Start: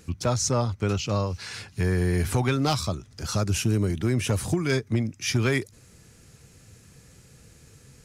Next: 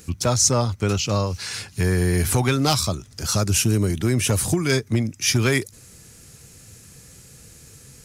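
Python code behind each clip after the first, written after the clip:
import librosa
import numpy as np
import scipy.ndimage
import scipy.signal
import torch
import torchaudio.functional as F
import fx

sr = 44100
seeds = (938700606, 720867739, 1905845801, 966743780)

y = fx.high_shelf(x, sr, hz=5700.0, db=10.5)
y = F.gain(torch.from_numpy(y), 3.5).numpy()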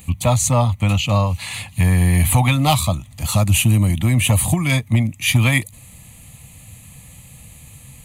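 y = fx.fixed_phaser(x, sr, hz=1500.0, stages=6)
y = F.gain(torch.from_numpy(y), 7.5).numpy()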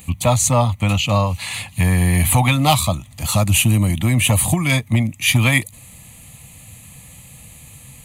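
y = fx.low_shelf(x, sr, hz=140.0, db=-5.0)
y = F.gain(torch.from_numpy(y), 2.0).numpy()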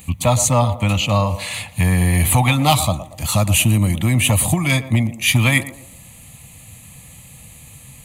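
y = fx.echo_banded(x, sr, ms=116, feedback_pct=44, hz=510.0, wet_db=-10.5)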